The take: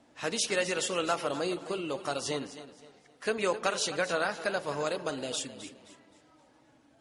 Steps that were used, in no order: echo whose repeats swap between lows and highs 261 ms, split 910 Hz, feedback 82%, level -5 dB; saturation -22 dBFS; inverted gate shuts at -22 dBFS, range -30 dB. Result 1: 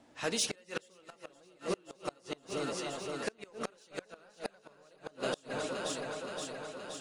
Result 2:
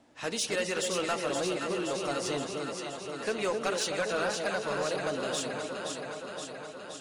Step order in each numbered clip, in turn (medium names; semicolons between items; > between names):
saturation > echo whose repeats swap between lows and highs > inverted gate; echo whose repeats swap between lows and highs > saturation > inverted gate